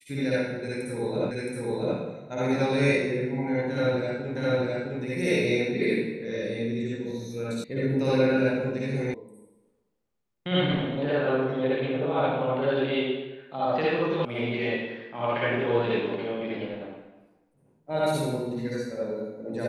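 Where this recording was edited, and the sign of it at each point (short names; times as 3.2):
1.31 repeat of the last 0.67 s
4.36 repeat of the last 0.66 s
7.64 sound cut off
9.14 sound cut off
14.25 sound cut off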